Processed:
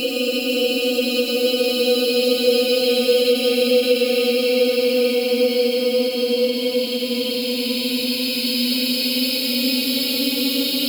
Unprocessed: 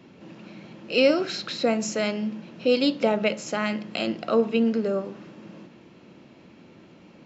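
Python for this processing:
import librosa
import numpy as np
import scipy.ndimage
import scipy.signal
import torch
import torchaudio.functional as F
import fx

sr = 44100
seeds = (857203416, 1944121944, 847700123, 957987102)

y = scipy.signal.medfilt(x, 5)
y = fx.rev_fdn(y, sr, rt60_s=0.92, lf_ratio=1.0, hf_ratio=0.7, size_ms=20.0, drr_db=7.5)
y = fx.stretch_vocoder_free(y, sr, factor=1.5)
y = fx.high_shelf(y, sr, hz=2400.0, db=8.0)
y = fx.dispersion(y, sr, late='lows', ms=68.0, hz=1300.0)
y = fx.paulstretch(y, sr, seeds[0], factor=47.0, window_s=0.1, from_s=4.06)
y = fx.high_shelf(y, sr, hz=4900.0, db=11.5)
y = fx.end_taper(y, sr, db_per_s=160.0)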